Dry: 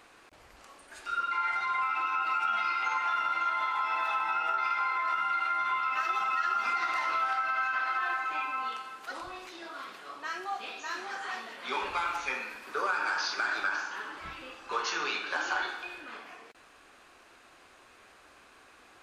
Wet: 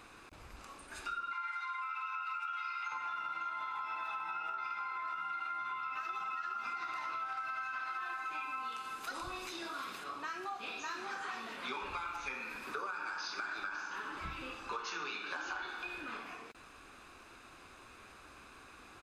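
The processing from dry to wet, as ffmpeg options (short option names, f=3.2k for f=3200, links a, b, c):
-filter_complex "[0:a]asettb=1/sr,asplit=3[a][b][c];[a]atrim=end=1.334[d];[b]atrim=start=1.33:end=2.92,asetpts=PTS-STARTPTS,afade=t=in:d=0.004:c=qsin,afade=t=out:st=1.586:d=0.004:c=qsin,highpass=f=1k:w=0.5412,highpass=f=1k:w=1.3066[e];[c]atrim=start=2.916[f];[d][e]acrossfade=d=0.004:c1=hsin:c2=qsin[g];[g][f]acrossfade=d=0.004:c1=qsin:c2=hsin,asettb=1/sr,asplit=3[h][i][j];[h]atrim=end=7.374[k];[i]atrim=start=7.37:end=10.04,asetpts=PTS-STARTPTS,afade=t=in:d=0.004:c=qsin,afade=t=out:st=2.666:d=0.004:c=qsin,highshelf=f=4.8k:g=8.5[l];[j]atrim=start=10.036[m];[k][l]acrossfade=d=0.004:c1=hsin:c2=qsin[n];[n][m]acrossfade=d=0.004:c1=qsin:c2=hsin,lowshelf=f=280:g=6.5,aecho=1:1:0.8:0.31,acompressor=threshold=-38dB:ratio=6"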